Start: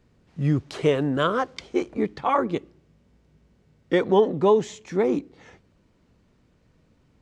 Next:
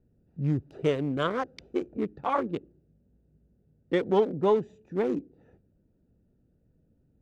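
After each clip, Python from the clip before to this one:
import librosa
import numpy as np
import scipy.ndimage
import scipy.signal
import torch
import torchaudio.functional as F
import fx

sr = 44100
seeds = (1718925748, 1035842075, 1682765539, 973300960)

y = fx.wiener(x, sr, points=41)
y = y * librosa.db_to_amplitude(-4.5)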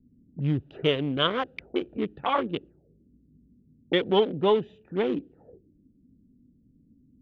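y = fx.envelope_lowpass(x, sr, base_hz=240.0, top_hz=3200.0, q=5.0, full_db=-31.5, direction='up')
y = y * librosa.db_to_amplitude(1.0)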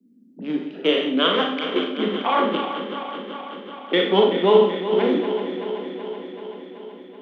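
y = fx.reverse_delay_fb(x, sr, ms=190, feedback_pct=82, wet_db=-9.5)
y = scipy.signal.sosfilt(scipy.signal.butter(16, 180.0, 'highpass', fs=sr, output='sos'), y)
y = fx.rev_schroeder(y, sr, rt60_s=0.56, comb_ms=27, drr_db=1.5)
y = y * librosa.db_to_amplitude(3.5)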